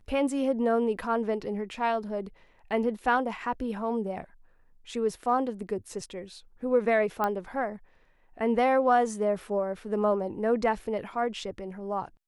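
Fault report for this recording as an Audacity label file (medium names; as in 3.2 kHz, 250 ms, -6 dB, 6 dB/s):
7.240000	7.240000	pop -15 dBFS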